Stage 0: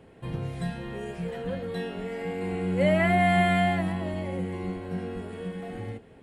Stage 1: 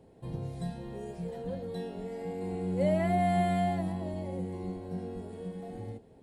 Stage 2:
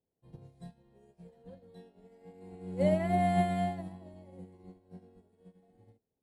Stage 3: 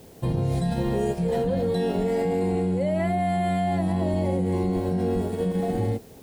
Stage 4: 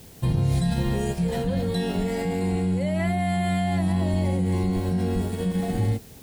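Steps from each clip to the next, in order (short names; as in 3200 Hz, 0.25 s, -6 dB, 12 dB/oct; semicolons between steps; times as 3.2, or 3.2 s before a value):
band shelf 1900 Hz -10 dB; gain -4.5 dB
upward expander 2.5:1, over -46 dBFS; gain +1.5 dB
fast leveller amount 100%
bell 490 Hz -10.5 dB 2.3 oct; gain +5.5 dB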